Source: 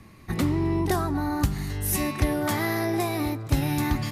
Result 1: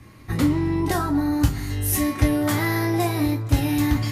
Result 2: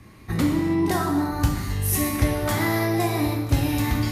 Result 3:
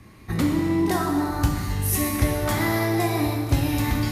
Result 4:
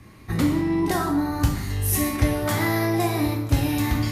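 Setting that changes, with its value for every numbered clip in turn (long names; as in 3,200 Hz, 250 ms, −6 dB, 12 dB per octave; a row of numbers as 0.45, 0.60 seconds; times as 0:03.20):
reverb whose tail is shaped and stops, gate: 80, 350, 530, 230 milliseconds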